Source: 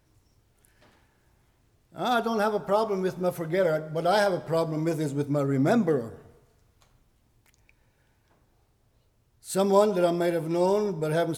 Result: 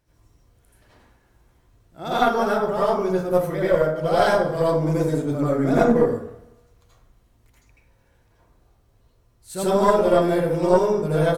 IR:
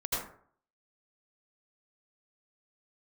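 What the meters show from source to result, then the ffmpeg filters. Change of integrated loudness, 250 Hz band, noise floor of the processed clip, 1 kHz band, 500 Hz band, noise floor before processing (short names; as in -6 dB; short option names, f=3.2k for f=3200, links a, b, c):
+5.5 dB, +4.5 dB, -61 dBFS, +5.5 dB, +5.5 dB, -67 dBFS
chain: -filter_complex "[0:a]aecho=1:1:104|208|312|416:0.0794|0.0445|0.0249|0.0139[a];[1:a]atrim=start_sample=2205[b];[a][b]afir=irnorm=-1:irlink=0,aeval=exprs='0.891*(cos(1*acos(clip(val(0)/0.891,-1,1)))-cos(1*PI/2))+0.251*(cos(2*acos(clip(val(0)/0.891,-1,1)))-cos(2*PI/2))':c=same,volume=-2dB"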